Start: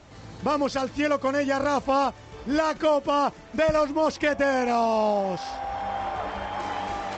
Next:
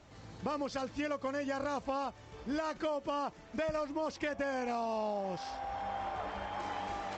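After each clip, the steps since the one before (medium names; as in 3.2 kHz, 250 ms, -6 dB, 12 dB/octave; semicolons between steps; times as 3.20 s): compression 4:1, threshold -24 dBFS, peak gain reduction 6 dB; trim -8 dB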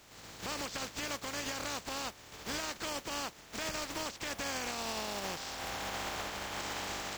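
spectral contrast reduction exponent 0.36; peak limiter -27 dBFS, peak gain reduction 9 dB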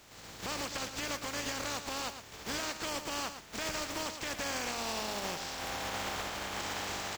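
delay 111 ms -9.5 dB; trim +1 dB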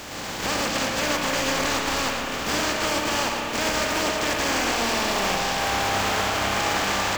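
spectral levelling over time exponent 0.6; spring tank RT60 3.2 s, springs 30/47 ms, chirp 70 ms, DRR 1 dB; trim +8 dB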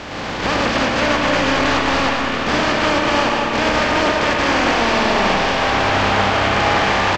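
distance through air 180 m; delay 202 ms -7 dB; trim +8.5 dB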